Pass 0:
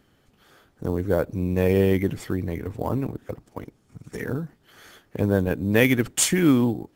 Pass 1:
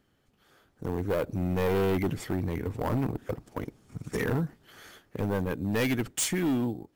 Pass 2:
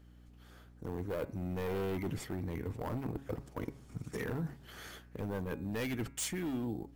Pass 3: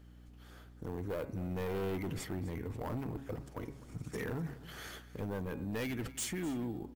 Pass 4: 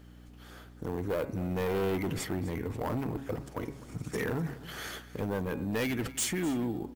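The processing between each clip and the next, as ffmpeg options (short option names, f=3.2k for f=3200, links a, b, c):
-af "dynaudnorm=f=200:g=9:m=15dB,asoftclip=type=hard:threshold=-15dB,volume=-8dB"
-af "areverse,acompressor=threshold=-36dB:ratio=6,areverse,aeval=exprs='val(0)+0.00141*(sin(2*PI*60*n/s)+sin(2*PI*2*60*n/s)/2+sin(2*PI*3*60*n/s)/3+sin(2*PI*4*60*n/s)/4+sin(2*PI*5*60*n/s)/5)':c=same,bandreject=f=137.6:t=h:w=4,bandreject=f=275.2:t=h:w=4,bandreject=f=412.8:t=h:w=4,bandreject=f=550.4:t=h:w=4,bandreject=f=688:t=h:w=4,bandreject=f=825.6:t=h:w=4,bandreject=f=963.2:t=h:w=4,bandreject=f=1.1008k:t=h:w=4,bandreject=f=1.2384k:t=h:w=4,bandreject=f=1.376k:t=h:w=4,bandreject=f=1.5136k:t=h:w=4,bandreject=f=1.6512k:t=h:w=4,bandreject=f=1.7888k:t=h:w=4,bandreject=f=1.9264k:t=h:w=4,bandreject=f=2.064k:t=h:w=4,bandreject=f=2.2016k:t=h:w=4,bandreject=f=2.3392k:t=h:w=4,bandreject=f=2.4768k:t=h:w=4,bandreject=f=2.6144k:t=h:w=4,bandreject=f=2.752k:t=h:w=4,volume=1dB"
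-af "alimiter=level_in=10dB:limit=-24dB:level=0:latency=1:release=16,volume=-10dB,aecho=1:1:253:0.133,volume=2dB"
-af "lowshelf=f=110:g=-6,volume=7dB"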